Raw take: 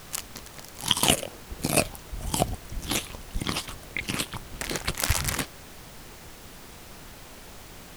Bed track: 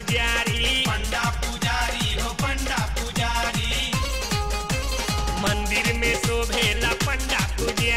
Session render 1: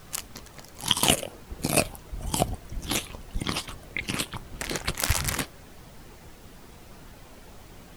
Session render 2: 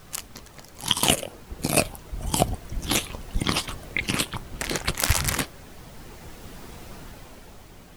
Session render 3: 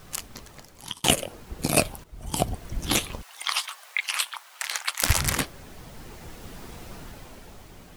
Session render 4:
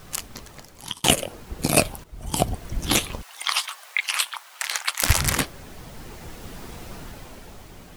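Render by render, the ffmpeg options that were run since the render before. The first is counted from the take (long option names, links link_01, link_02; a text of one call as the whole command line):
ffmpeg -i in.wav -af "afftdn=noise_reduction=7:noise_floor=-46" out.wav
ffmpeg -i in.wav -af "dynaudnorm=framelen=110:gausssize=17:maxgain=7dB" out.wav
ffmpeg -i in.wav -filter_complex "[0:a]asplit=3[link_01][link_02][link_03];[link_01]afade=type=out:start_time=3.21:duration=0.02[link_04];[link_02]highpass=frequency=880:width=0.5412,highpass=frequency=880:width=1.3066,afade=type=in:start_time=3.21:duration=0.02,afade=type=out:start_time=5.02:duration=0.02[link_05];[link_03]afade=type=in:start_time=5.02:duration=0.02[link_06];[link_04][link_05][link_06]amix=inputs=3:normalize=0,asplit=3[link_07][link_08][link_09];[link_07]atrim=end=1.04,asetpts=PTS-STARTPTS,afade=type=out:start_time=0.5:duration=0.54[link_10];[link_08]atrim=start=1.04:end=2.04,asetpts=PTS-STARTPTS,afade=type=in:duration=0.004:curve=hsin,afade=type=out:start_time=0.996:duration=0.004:curve=hsin:silence=0.199526[link_11];[link_09]atrim=start=2.04,asetpts=PTS-STARTPTS,afade=type=in:duration=0.62:silence=0.199526[link_12];[link_10][link_11][link_12]concat=n=3:v=0:a=1" out.wav
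ffmpeg -i in.wav -af "volume=3dB,alimiter=limit=-1dB:level=0:latency=1" out.wav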